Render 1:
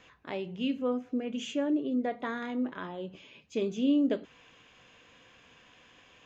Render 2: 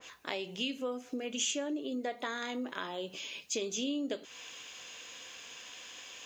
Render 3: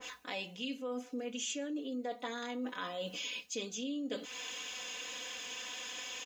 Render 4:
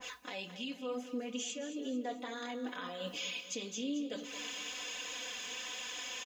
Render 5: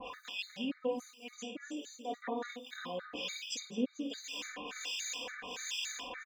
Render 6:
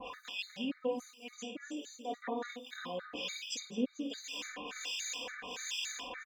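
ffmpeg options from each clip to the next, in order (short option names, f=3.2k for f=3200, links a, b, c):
-af "bass=f=250:g=-12,treble=f=4k:g=15,acompressor=threshold=-40dB:ratio=3,adynamicequalizer=threshold=0.00126:dfrequency=2000:dqfactor=0.7:tfrequency=2000:tqfactor=0.7:attack=5:release=100:ratio=0.375:range=2:mode=boostabove:tftype=highshelf,volume=4.5dB"
-af "aecho=1:1:4:0.91,areverse,acompressor=threshold=-39dB:ratio=6,areverse,volume=2.5dB"
-filter_complex "[0:a]alimiter=level_in=6dB:limit=-24dB:level=0:latency=1:release=330,volume=-6dB,flanger=delay=1:depth=4.4:regen=-42:speed=1.2:shape=triangular,asplit=2[a][b];[b]aecho=0:1:220|440|660|880|1100:0.251|0.123|0.0603|0.0296|0.0145[c];[a][c]amix=inputs=2:normalize=0,volume=4.5dB"
-filter_complex "[0:a]acrossover=split=2100[a][b];[a]aeval=exprs='val(0)*(1-1/2+1/2*cos(2*PI*1.3*n/s))':c=same[c];[b]aeval=exprs='val(0)*(1-1/2-1/2*cos(2*PI*1.3*n/s))':c=same[d];[c][d]amix=inputs=2:normalize=0,asplit=2[e][f];[f]adelay=50,volume=-9dB[g];[e][g]amix=inputs=2:normalize=0,afftfilt=real='re*gt(sin(2*PI*3.5*pts/sr)*(1-2*mod(floor(b*sr/1024/1200),2)),0)':imag='im*gt(sin(2*PI*3.5*pts/sr)*(1-2*mod(floor(b*sr/1024/1200),2)),0)':win_size=1024:overlap=0.75,volume=8.5dB"
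-ar 48000 -c:a libopus -b:a 192k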